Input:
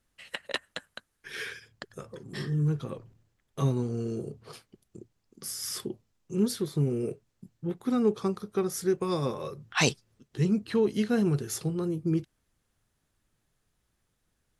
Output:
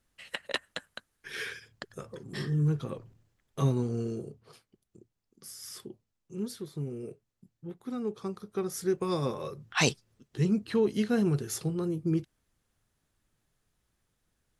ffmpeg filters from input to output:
ffmpeg -i in.wav -af "volume=8dB,afade=type=out:start_time=4:duration=0.42:silence=0.354813,afade=type=in:start_time=8.1:duration=0.98:silence=0.398107" out.wav

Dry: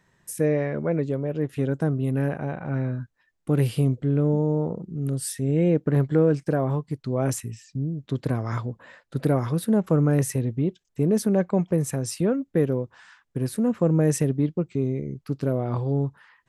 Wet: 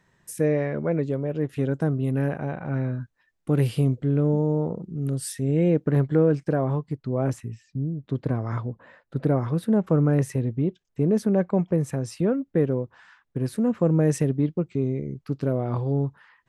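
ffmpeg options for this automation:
ffmpeg -i in.wav -af "asetnsamples=nb_out_samples=441:pad=0,asendcmd='6 lowpass f 3600;6.93 lowpass f 1500;9.52 lowpass f 2600;13.44 lowpass f 4800',lowpass=frequency=8900:poles=1" out.wav

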